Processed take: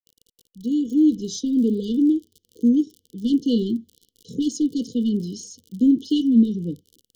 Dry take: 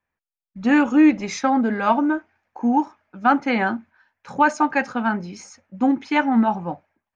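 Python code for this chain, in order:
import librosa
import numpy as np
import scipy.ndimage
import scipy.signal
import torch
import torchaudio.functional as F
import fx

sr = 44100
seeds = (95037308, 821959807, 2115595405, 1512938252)

p1 = fx.fade_in_head(x, sr, length_s=2.0)
p2 = fx.dmg_crackle(p1, sr, seeds[0], per_s=45.0, level_db=-37.0)
p3 = 10.0 ** (-16.5 / 20.0) * np.tanh(p2 / 10.0 ** (-16.5 / 20.0))
p4 = p2 + (p3 * 10.0 ** (-4.5 / 20.0))
y = fx.brickwall_bandstop(p4, sr, low_hz=500.0, high_hz=2900.0)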